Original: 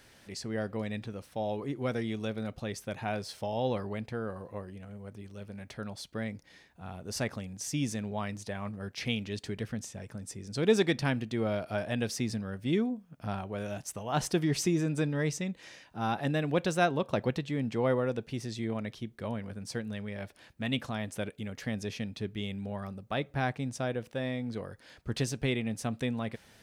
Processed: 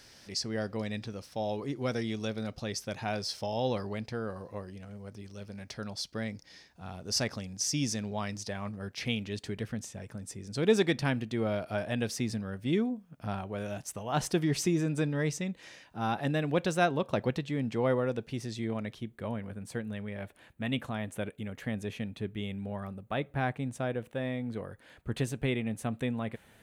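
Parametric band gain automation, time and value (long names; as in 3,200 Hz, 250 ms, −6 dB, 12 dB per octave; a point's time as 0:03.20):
parametric band 5,200 Hz 0.66 octaves
0:08.38 +11 dB
0:09.06 −1 dB
0:18.79 −1 dB
0:19.31 −13 dB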